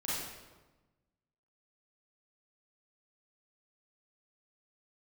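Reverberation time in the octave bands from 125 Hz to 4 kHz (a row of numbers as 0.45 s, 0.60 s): 1.6 s, 1.5 s, 1.2 s, 1.2 s, 0.95 s, 0.85 s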